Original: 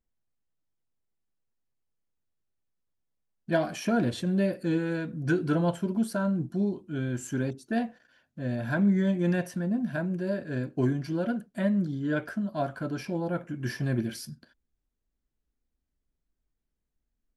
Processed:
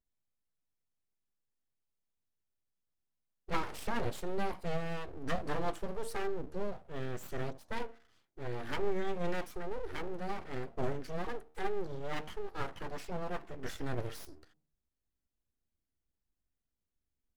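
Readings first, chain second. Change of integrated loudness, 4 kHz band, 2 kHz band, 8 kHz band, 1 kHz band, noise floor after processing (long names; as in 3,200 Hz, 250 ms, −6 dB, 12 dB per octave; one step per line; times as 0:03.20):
−10.5 dB, −4.0 dB, −7.5 dB, −7.5 dB, −2.0 dB, below −85 dBFS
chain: hum removal 76.74 Hz, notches 8
full-wave rectification
level −5 dB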